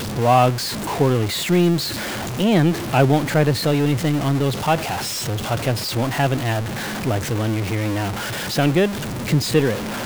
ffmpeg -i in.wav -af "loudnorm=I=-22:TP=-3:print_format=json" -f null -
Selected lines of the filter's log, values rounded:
"input_i" : "-20.3",
"input_tp" : "-2.2",
"input_lra" : "3.1",
"input_thresh" : "-30.3",